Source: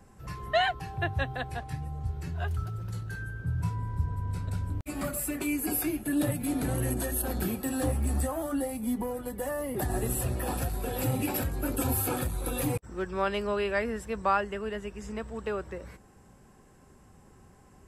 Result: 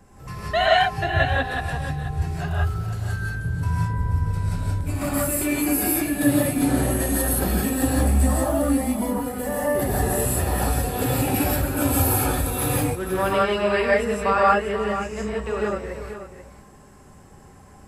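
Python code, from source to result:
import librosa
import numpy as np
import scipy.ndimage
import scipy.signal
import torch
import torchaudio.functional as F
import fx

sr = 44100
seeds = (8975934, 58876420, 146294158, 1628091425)

y = x + 10.0 ** (-11.0 / 20.0) * np.pad(x, (int(484 * sr / 1000.0), 0))[:len(x)]
y = fx.rev_gated(y, sr, seeds[0], gate_ms=200, shape='rising', drr_db=-5.5)
y = y * 10.0 ** (2.5 / 20.0)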